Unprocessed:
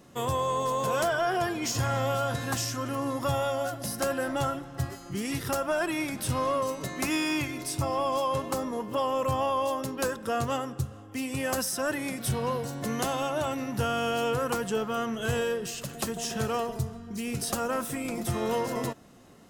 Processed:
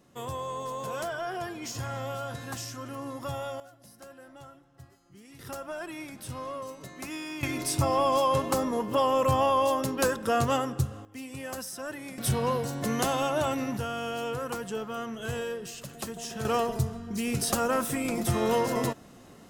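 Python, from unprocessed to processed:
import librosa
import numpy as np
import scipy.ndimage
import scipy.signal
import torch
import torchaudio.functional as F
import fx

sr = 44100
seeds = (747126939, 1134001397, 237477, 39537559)

y = fx.gain(x, sr, db=fx.steps((0.0, -7.0), (3.6, -20.0), (5.39, -9.5), (7.43, 3.5), (11.05, -8.0), (12.18, 2.0), (13.77, -5.0), (16.45, 3.0)))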